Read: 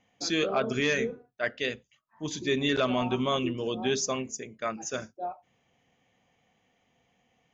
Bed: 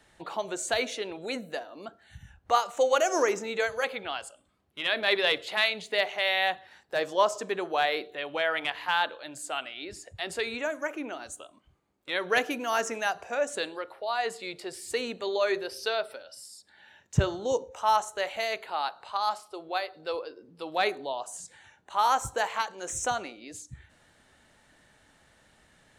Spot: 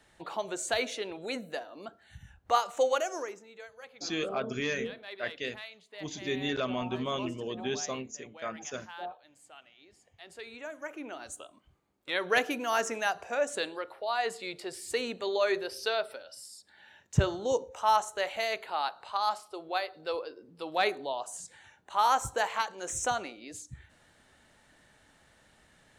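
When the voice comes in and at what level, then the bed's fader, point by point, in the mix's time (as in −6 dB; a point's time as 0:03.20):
3.80 s, −5.5 dB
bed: 0:02.86 −2 dB
0:03.47 −19.5 dB
0:09.98 −19.5 dB
0:11.36 −1 dB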